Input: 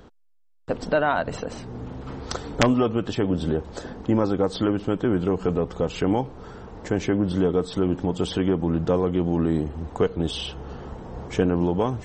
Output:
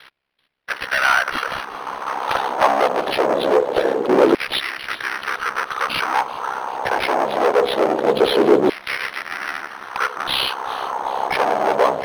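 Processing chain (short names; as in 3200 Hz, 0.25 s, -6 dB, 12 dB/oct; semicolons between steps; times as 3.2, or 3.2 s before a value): HPF 82 Hz 24 dB/oct; tube stage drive 29 dB, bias 0.5; ring modulator 33 Hz; sine folder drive 20 dB, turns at -9.5 dBFS; LFO high-pass saw down 0.23 Hz 380–2300 Hz; on a send: thin delay 0.385 s, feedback 58%, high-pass 3600 Hz, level -13.5 dB; on the sum: decimation joined by straight lines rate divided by 6×; gain -1.5 dB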